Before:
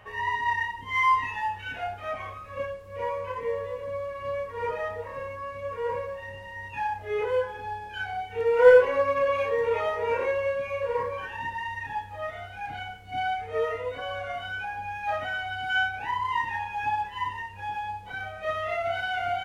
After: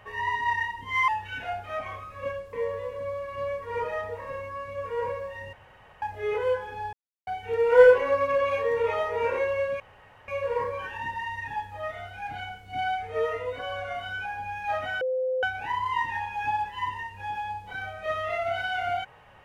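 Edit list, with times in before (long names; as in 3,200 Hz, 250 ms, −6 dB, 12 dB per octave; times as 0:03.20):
0:01.08–0:01.42: remove
0:02.87–0:03.40: remove
0:06.40–0:06.89: fill with room tone
0:07.80–0:08.14: silence
0:10.67: splice in room tone 0.48 s
0:15.40–0:15.82: beep over 515 Hz −24 dBFS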